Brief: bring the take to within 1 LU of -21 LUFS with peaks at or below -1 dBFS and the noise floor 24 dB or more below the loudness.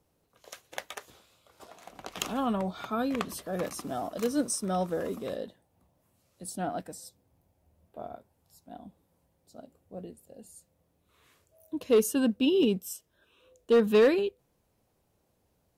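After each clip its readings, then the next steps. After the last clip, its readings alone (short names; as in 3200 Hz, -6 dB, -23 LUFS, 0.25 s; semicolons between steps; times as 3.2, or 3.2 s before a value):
clipped 0.3%; flat tops at -16.0 dBFS; loudness -29.0 LUFS; peak -16.0 dBFS; loudness target -21.0 LUFS
-> clip repair -16 dBFS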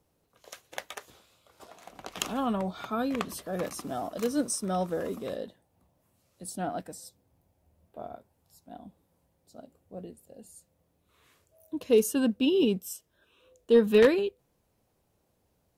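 clipped 0.0%; loudness -28.5 LUFS; peak -7.0 dBFS; loudness target -21.0 LUFS
-> gain +7.5 dB; limiter -1 dBFS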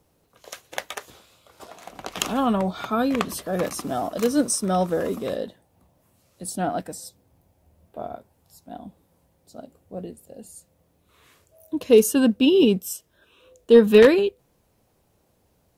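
loudness -21.0 LUFS; peak -1.0 dBFS; noise floor -66 dBFS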